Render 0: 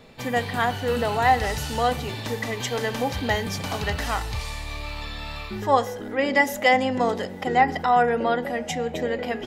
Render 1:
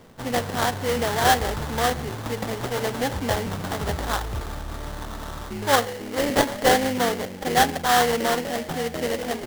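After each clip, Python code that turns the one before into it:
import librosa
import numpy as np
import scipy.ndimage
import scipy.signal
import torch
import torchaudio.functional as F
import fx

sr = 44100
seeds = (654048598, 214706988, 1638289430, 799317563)

y = fx.sample_hold(x, sr, seeds[0], rate_hz=2500.0, jitter_pct=20)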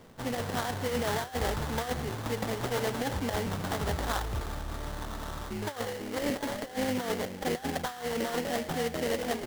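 y = fx.over_compress(x, sr, threshold_db=-24.0, ratio=-0.5)
y = F.gain(torch.from_numpy(y), -6.0).numpy()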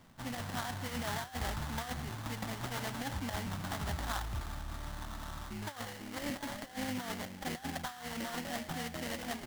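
y = fx.peak_eq(x, sr, hz=450.0, db=-13.5, octaves=0.62)
y = F.gain(torch.from_numpy(y), -4.5).numpy()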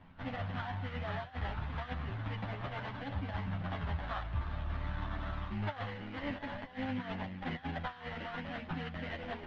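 y = scipy.signal.sosfilt(scipy.signal.butter(4, 3100.0, 'lowpass', fs=sr, output='sos'), x)
y = fx.rider(y, sr, range_db=10, speed_s=0.5)
y = fx.chorus_voices(y, sr, voices=4, hz=0.33, base_ms=11, depth_ms=1.1, mix_pct=50)
y = F.gain(torch.from_numpy(y), 2.5).numpy()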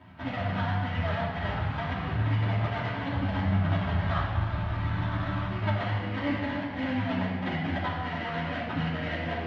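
y = scipy.signal.sosfilt(scipy.signal.butter(2, 80.0, 'highpass', fs=sr, output='sos'), x)
y = fx.room_shoebox(y, sr, seeds[1], volume_m3=2200.0, walls='mixed', distance_m=2.8)
y = F.gain(torch.from_numpy(y), 4.5).numpy()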